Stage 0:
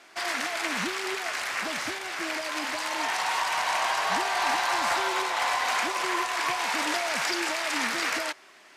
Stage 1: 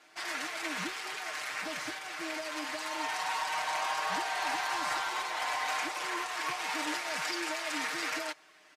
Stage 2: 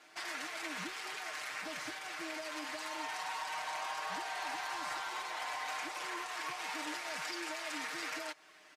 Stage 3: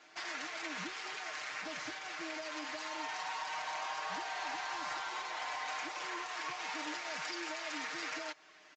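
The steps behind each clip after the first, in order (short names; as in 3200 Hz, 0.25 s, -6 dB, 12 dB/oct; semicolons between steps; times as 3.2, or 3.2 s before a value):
comb 6.5 ms, depth 88%; gain -9 dB
compressor 2:1, threshold -42 dBFS, peak gain reduction 7.5 dB
downsampling 16000 Hz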